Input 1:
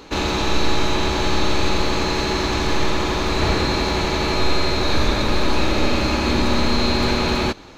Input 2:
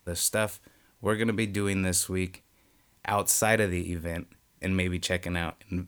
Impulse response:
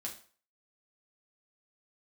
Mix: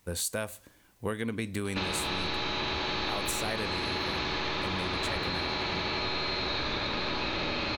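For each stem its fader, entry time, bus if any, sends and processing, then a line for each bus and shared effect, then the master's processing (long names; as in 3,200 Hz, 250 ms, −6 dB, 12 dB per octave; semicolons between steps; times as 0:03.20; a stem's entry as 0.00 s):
−1.0 dB, 1.65 s, no send, sub-octave generator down 1 octave, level −2 dB; low-pass filter 4,300 Hz 24 dB per octave; spectral tilt +2.5 dB per octave
−1.0 dB, 0.00 s, send −15.5 dB, no processing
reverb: on, RT60 0.45 s, pre-delay 5 ms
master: downward compressor 6 to 1, threshold −29 dBFS, peak gain reduction 12.5 dB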